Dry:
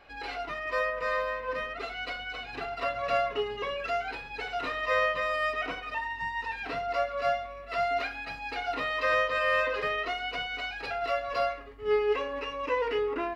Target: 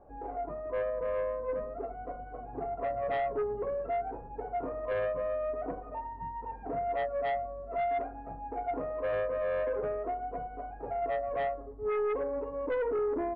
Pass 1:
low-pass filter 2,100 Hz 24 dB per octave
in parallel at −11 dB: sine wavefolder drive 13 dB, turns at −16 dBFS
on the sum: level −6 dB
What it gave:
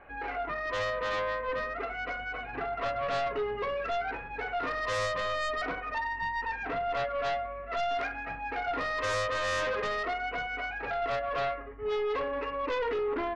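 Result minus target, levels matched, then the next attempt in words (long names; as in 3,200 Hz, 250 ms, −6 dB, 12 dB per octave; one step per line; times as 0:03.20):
2,000 Hz band +10.0 dB
low-pass filter 800 Hz 24 dB per octave
in parallel at −11 dB: sine wavefolder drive 13 dB, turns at −16 dBFS
on the sum: level −6 dB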